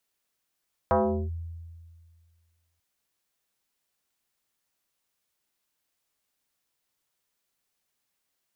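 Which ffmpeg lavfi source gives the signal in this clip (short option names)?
-f lavfi -i "aevalsrc='0.133*pow(10,-3*t/1.93)*sin(2*PI*83.4*t+3.5*clip(1-t/0.39,0,1)*sin(2*PI*3.56*83.4*t))':d=1.89:s=44100"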